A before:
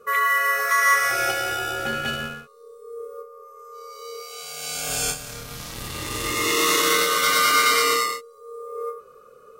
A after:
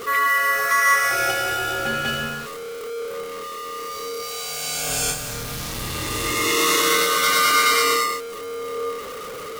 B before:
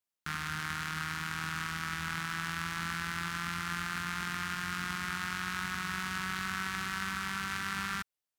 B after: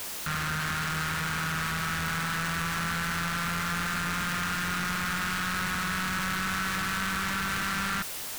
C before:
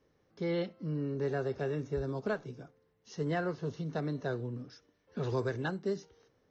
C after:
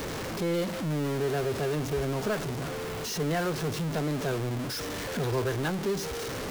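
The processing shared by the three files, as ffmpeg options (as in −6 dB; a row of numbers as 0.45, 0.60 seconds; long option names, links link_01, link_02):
-af "aeval=exprs='val(0)+0.5*0.0376*sgn(val(0))':channel_layout=same"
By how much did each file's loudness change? 0.0, +6.0, +5.5 LU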